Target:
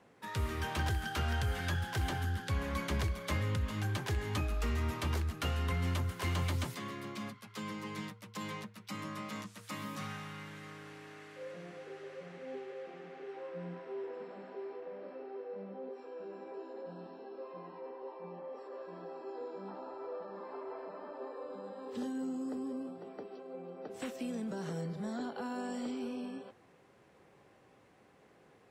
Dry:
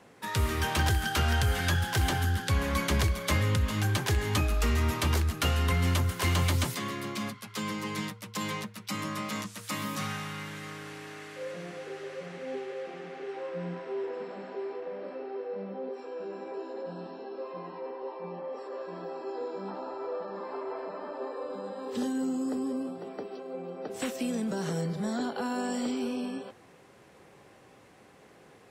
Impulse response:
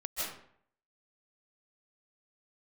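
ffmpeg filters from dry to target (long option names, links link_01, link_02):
-af "highshelf=frequency=4000:gain=-6,volume=-7dB"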